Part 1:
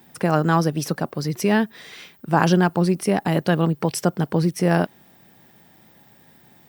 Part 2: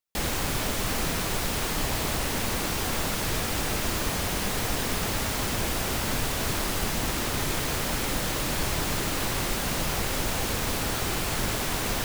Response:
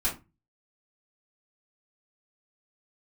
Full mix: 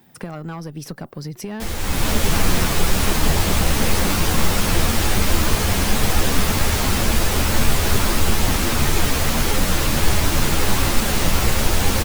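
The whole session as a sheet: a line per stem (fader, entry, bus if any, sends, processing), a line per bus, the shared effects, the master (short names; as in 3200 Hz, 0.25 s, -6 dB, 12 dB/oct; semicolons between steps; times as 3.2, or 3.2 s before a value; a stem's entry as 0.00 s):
-2.5 dB, 0.00 s, no send, one diode to ground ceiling -12.5 dBFS; compressor 10:1, threshold -26 dBFS, peak gain reduction 10.5 dB
+0.5 dB, 1.45 s, no send, AGC gain up to 10 dB; ensemble effect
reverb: off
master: low shelf 120 Hz +7 dB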